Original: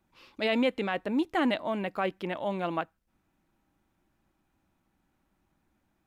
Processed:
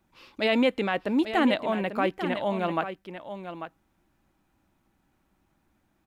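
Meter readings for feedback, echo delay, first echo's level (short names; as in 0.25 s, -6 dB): no steady repeat, 0.843 s, -10.0 dB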